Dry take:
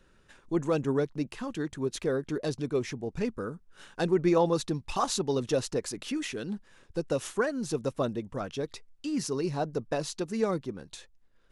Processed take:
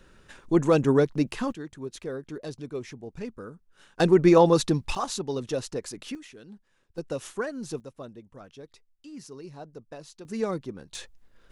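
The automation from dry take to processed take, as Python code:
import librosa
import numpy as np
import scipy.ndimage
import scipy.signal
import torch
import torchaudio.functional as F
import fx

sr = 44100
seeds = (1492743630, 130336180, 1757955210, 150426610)

y = fx.gain(x, sr, db=fx.steps((0.0, 7.0), (1.52, -5.5), (4.0, 7.0), (4.95, -2.0), (6.15, -12.0), (6.98, -3.0), (7.8, -12.0), (10.25, -0.5), (10.95, 8.5)))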